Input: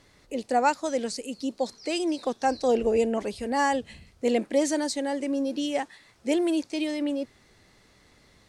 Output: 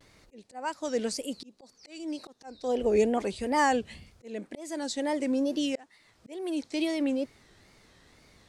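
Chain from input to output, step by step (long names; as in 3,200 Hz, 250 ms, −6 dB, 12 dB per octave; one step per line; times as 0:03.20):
volume swells 555 ms
tape wow and flutter 130 cents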